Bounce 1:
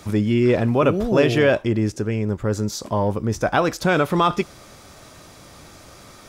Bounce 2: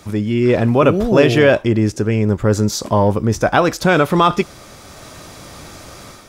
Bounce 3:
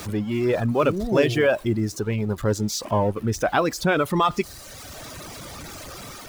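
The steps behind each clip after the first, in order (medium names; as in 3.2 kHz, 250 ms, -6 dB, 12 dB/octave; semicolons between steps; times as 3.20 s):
level rider gain up to 8 dB
jump at every zero crossing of -25 dBFS; reverb removal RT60 1.4 s; trim -7 dB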